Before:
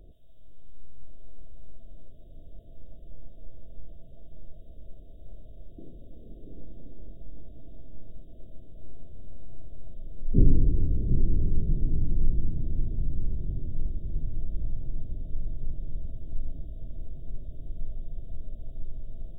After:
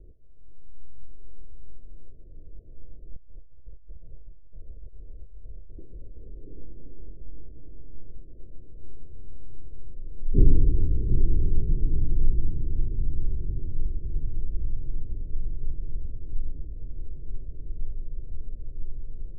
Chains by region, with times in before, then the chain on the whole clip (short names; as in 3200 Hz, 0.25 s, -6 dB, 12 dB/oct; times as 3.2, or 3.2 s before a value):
3.16–6.43 bell 270 Hz -7 dB 1.9 oct + negative-ratio compressor -38 dBFS + Doppler distortion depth 0.17 ms
whole clip: steep low-pass 540 Hz 36 dB/oct; comb 2.4 ms, depth 34%